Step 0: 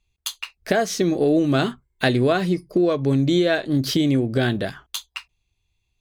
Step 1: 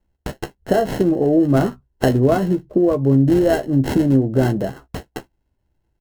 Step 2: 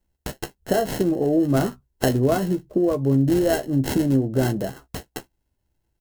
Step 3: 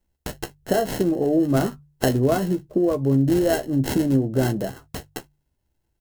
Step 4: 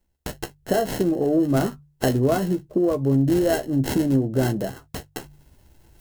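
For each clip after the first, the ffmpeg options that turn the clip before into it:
ffmpeg -i in.wav -filter_complex "[0:a]acrossover=split=610|1200[link_01][link_02][link_03];[link_03]acrusher=samples=37:mix=1:aa=0.000001[link_04];[link_01][link_02][link_04]amix=inputs=3:normalize=0,asplit=2[link_05][link_06];[link_06]adelay=15,volume=-9.5dB[link_07];[link_05][link_07]amix=inputs=2:normalize=0,volume=3dB" out.wav
ffmpeg -i in.wav -af "highshelf=frequency=3900:gain=10.5,volume=-4.5dB" out.wav
ffmpeg -i in.wav -af "bandreject=frequency=48.95:width_type=h:width=4,bandreject=frequency=97.9:width_type=h:width=4,bandreject=frequency=146.85:width_type=h:width=4" out.wav
ffmpeg -i in.wav -af "areverse,acompressor=mode=upward:threshold=-35dB:ratio=2.5,areverse,asoftclip=type=tanh:threshold=-6dB" out.wav

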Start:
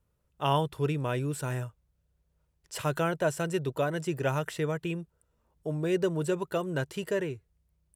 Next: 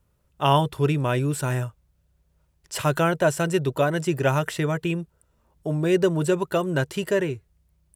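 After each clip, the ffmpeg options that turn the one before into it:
ffmpeg -i in.wav -af "bandreject=frequency=470:width=12,volume=7.5dB" out.wav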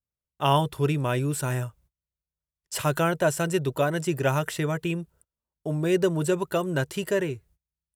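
ffmpeg -i in.wav -af "agate=range=-26dB:threshold=-53dB:ratio=16:detection=peak,highshelf=frequency=8000:gain=6,volume=-2.5dB" out.wav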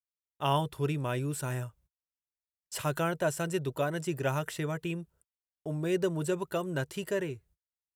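ffmpeg -i in.wav -af "agate=range=-15dB:threshold=-55dB:ratio=16:detection=peak,volume=-6.5dB" out.wav

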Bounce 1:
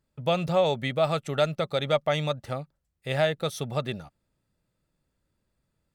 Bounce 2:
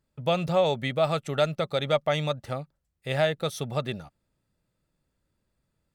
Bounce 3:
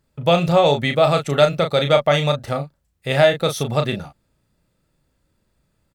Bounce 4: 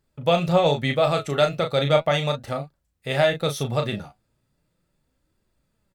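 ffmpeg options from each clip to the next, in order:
ffmpeg -i in.wav -af anull out.wav
ffmpeg -i in.wav -filter_complex "[0:a]asplit=2[link_01][link_02];[link_02]adelay=35,volume=-6.5dB[link_03];[link_01][link_03]amix=inputs=2:normalize=0,volume=8.5dB" out.wav
ffmpeg -i in.wav -af "flanger=delay=2.4:depth=7.6:regen=67:speed=0.37:shape=triangular" out.wav

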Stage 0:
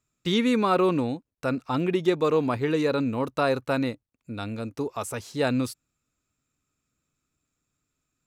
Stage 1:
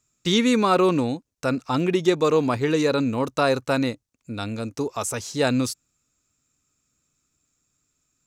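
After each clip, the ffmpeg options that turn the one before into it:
ffmpeg -i in.wav -af "equalizer=frequency=6400:width=1.3:gain=9.5,volume=3dB" out.wav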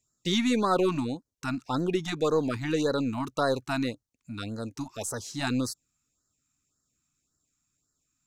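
ffmpeg -i in.wav -af "aeval=exprs='0.473*(cos(1*acos(clip(val(0)/0.473,-1,1)))-cos(1*PI/2))+0.0119*(cos(6*acos(clip(val(0)/0.473,-1,1)))-cos(6*PI/2))':channel_layout=same,afftfilt=real='re*(1-between(b*sr/1024,420*pow(2800/420,0.5+0.5*sin(2*PI*1.8*pts/sr))/1.41,420*pow(2800/420,0.5+0.5*sin(2*PI*1.8*pts/sr))*1.41))':imag='im*(1-between(b*sr/1024,420*pow(2800/420,0.5+0.5*sin(2*PI*1.8*pts/sr))/1.41,420*pow(2800/420,0.5+0.5*sin(2*PI*1.8*pts/sr))*1.41))':win_size=1024:overlap=0.75,volume=-5.5dB" out.wav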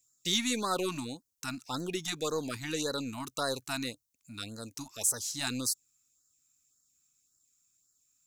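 ffmpeg -i in.wav -af "crystalizer=i=5.5:c=0,volume=-9dB" out.wav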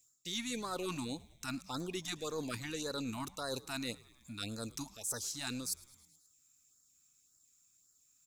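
ffmpeg -i in.wav -filter_complex "[0:a]areverse,acompressor=threshold=-39dB:ratio=6,areverse,asplit=6[link_01][link_02][link_03][link_04][link_05][link_06];[link_02]adelay=106,afreqshift=-85,volume=-21.5dB[link_07];[link_03]adelay=212,afreqshift=-170,volume=-25.2dB[link_08];[link_04]adelay=318,afreqshift=-255,volume=-29dB[link_09];[link_05]adelay=424,afreqshift=-340,volume=-32.7dB[link_10];[link_06]adelay=530,afreqshift=-425,volume=-36.5dB[link_11];[link_01][link_07][link_08][link_09][link_10][link_11]amix=inputs=6:normalize=0,volume=2.5dB" out.wav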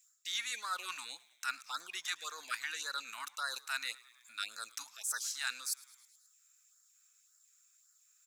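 ffmpeg -i in.wav -af "highpass=frequency=1500:width_type=q:width=2.6,volume=1dB" out.wav

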